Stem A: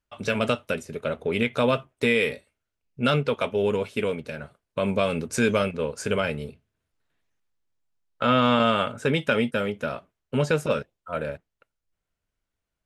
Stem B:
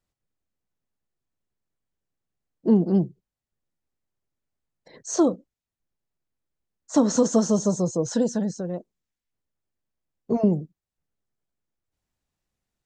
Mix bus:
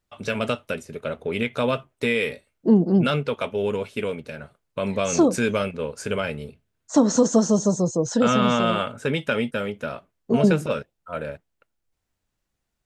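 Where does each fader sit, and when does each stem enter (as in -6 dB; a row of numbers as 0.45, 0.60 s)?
-1.0, +2.0 dB; 0.00, 0.00 s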